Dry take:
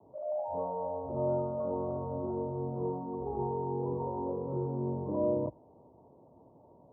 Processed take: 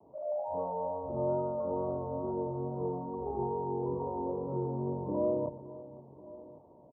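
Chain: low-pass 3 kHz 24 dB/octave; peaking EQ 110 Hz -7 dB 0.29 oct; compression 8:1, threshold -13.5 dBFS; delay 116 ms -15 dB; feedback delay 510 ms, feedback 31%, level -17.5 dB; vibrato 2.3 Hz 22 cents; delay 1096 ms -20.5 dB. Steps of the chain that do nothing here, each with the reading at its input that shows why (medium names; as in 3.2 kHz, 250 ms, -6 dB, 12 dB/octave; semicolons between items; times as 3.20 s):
low-pass 3 kHz: input has nothing above 1.1 kHz; compression, threshold -13.5 dBFS: peak at its input -19.5 dBFS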